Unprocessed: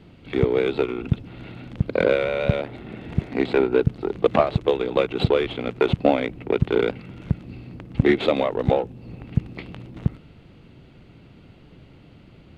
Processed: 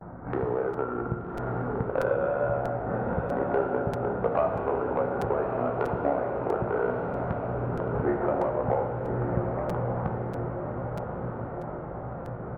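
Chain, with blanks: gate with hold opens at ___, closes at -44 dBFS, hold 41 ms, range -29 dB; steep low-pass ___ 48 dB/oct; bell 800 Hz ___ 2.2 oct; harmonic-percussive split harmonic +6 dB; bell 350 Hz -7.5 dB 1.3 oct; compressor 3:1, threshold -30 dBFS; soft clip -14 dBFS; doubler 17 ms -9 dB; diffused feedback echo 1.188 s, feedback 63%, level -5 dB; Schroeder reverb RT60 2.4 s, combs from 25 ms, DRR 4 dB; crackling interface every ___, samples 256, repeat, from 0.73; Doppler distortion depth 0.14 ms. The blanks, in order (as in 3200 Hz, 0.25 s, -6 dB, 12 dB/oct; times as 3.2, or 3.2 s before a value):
-43 dBFS, 1600 Hz, +13.5 dB, 0.64 s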